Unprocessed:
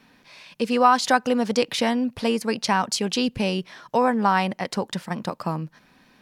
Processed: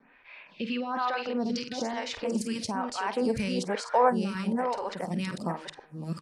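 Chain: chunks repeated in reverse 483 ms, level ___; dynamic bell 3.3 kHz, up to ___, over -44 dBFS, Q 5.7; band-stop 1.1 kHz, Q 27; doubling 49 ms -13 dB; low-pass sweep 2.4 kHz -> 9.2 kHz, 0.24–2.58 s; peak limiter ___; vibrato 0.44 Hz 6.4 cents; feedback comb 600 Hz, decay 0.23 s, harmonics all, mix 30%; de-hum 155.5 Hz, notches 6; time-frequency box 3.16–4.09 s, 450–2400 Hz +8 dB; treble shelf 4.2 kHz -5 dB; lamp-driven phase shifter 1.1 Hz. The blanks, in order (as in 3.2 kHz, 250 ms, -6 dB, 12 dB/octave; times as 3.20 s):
-1 dB, -3 dB, -15.5 dBFS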